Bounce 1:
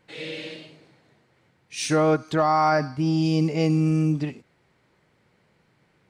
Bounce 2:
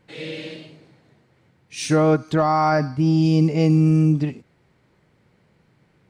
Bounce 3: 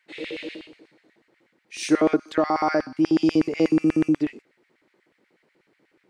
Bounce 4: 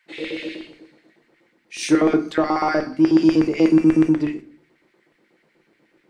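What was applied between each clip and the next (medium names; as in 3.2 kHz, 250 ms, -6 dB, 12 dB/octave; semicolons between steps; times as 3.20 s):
bass shelf 360 Hz +7 dB
LFO high-pass square 8.2 Hz 320–1900 Hz; trim -4 dB
in parallel at -8 dB: saturation -19.5 dBFS, distortion -11 dB; on the sum: simulated room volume 250 m³, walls furnished, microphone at 0.81 m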